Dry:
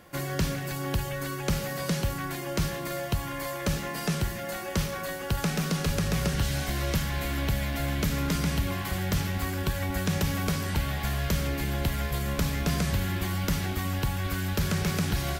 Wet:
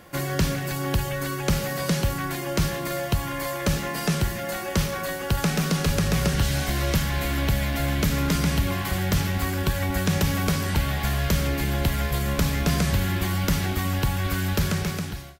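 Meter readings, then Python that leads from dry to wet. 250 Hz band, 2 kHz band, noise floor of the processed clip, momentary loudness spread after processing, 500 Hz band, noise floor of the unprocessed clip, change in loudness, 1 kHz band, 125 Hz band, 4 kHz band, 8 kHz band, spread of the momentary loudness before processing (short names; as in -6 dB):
+4.5 dB, +4.5 dB, -31 dBFS, 4 LU, +4.5 dB, -35 dBFS, +4.5 dB, +4.5 dB, +4.5 dB, +4.5 dB, +4.5 dB, 4 LU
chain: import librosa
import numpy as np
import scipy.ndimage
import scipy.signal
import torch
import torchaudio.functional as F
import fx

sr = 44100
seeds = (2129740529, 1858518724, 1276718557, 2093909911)

y = fx.fade_out_tail(x, sr, length_s=0.84)
y = y * 10.0 ** (4.5 / 20.0)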